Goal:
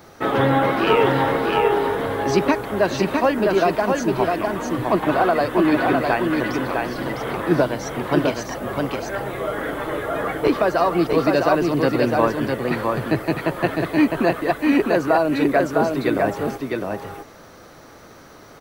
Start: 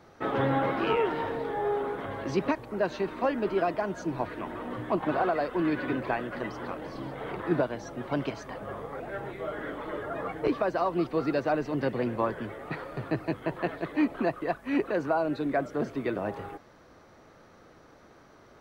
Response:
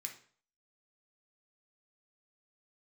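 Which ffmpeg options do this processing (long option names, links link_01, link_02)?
-filter_complex "[0:a]aemphasis=mode=production:type=50kf,asplit=2[link_01][link_02];[link_02]aecho=0:1:656:0.668[link_03];[link_01][link_03]amix=inputs=2:normalize=0,volume=8.5dB"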